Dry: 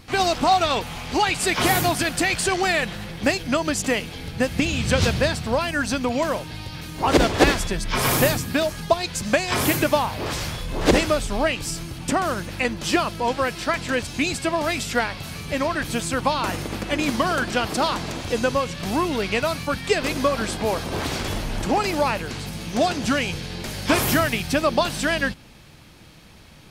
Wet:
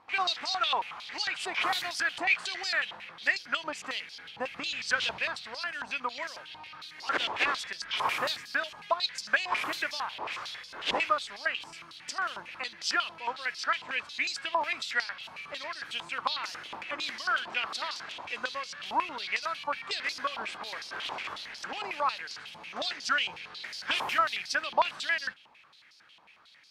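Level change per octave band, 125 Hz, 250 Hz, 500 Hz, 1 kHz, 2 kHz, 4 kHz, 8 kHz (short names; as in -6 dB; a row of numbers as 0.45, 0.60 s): -32.0, -25.0, -17.5, -8.0, -5.0, -5.5, -15.0 dB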